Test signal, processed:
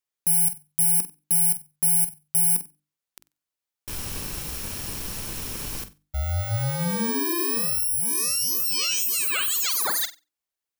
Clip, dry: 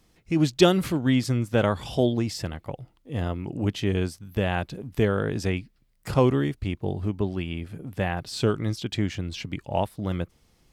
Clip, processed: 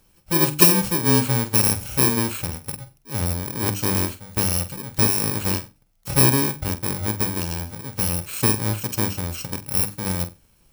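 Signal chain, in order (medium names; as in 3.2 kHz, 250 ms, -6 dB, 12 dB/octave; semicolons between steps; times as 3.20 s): bit-reversed sample order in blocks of 64 samples; hum notches 50/100/150/200/250/300/350 Hz; on a send: flutter echo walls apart 8 m, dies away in 0.24 s; on the sum: trim +3.5 dB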